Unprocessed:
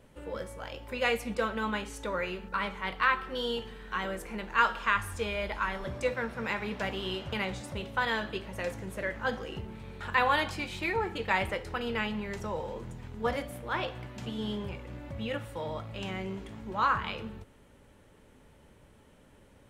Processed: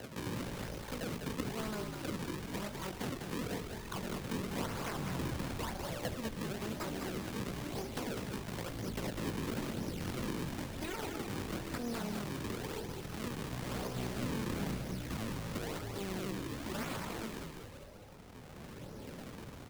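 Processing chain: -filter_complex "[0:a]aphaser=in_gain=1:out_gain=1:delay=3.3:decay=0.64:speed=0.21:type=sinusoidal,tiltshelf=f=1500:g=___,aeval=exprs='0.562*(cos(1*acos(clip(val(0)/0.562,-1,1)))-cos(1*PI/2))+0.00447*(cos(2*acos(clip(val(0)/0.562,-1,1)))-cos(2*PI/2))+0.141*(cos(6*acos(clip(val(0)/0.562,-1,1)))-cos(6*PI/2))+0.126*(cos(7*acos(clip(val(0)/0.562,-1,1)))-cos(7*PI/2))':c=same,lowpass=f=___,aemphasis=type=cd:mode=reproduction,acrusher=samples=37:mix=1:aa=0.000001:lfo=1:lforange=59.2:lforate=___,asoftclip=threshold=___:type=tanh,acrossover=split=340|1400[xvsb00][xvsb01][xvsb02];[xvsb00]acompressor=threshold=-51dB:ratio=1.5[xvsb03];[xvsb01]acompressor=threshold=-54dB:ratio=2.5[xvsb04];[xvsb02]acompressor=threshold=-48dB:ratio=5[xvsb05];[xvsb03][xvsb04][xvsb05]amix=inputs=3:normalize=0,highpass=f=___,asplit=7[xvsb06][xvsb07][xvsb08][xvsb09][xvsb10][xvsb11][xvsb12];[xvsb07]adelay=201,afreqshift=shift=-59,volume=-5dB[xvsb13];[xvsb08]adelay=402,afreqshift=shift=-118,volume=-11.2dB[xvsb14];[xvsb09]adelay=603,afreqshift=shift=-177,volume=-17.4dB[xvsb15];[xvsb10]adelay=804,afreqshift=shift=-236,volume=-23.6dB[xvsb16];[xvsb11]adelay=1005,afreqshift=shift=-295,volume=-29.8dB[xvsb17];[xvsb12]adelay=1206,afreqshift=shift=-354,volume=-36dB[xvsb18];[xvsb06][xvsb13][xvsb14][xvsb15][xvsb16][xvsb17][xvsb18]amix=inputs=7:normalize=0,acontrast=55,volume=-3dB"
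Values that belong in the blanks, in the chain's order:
8.5, 2400, 0.99, -20.5dB, 110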